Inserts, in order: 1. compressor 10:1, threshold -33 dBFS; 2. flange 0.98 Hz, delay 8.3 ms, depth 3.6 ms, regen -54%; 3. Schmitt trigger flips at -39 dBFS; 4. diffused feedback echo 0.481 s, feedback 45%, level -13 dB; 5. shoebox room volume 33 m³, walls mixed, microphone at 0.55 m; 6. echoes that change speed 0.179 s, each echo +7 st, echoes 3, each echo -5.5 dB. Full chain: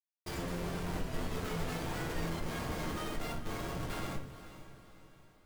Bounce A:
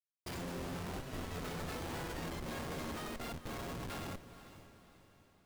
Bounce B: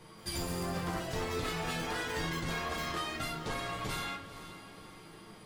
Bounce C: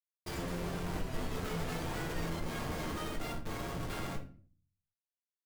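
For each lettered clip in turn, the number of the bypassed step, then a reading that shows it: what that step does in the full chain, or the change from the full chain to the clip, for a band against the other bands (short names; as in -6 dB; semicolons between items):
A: 5, crest factor change -3.0 dB; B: 3, crest factor change +2.0 dB; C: 4, momentary loudness spread change -10 LU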